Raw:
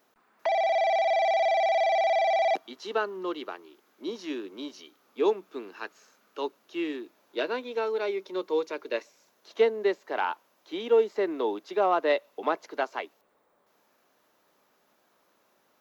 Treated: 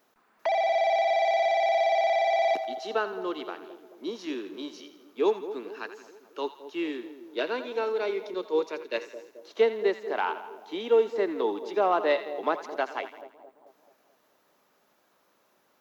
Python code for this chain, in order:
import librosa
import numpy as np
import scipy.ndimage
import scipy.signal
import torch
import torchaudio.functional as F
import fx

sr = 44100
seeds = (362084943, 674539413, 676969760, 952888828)

y = fx.echo_split(x, sr, split_hz=820.0, low_ms=218, high_ms=83, feedback_pct=52, wet_db=-12.0)
y = fx.band_widen(y, sr, depth_pct=70, at=(8.34, 8.98))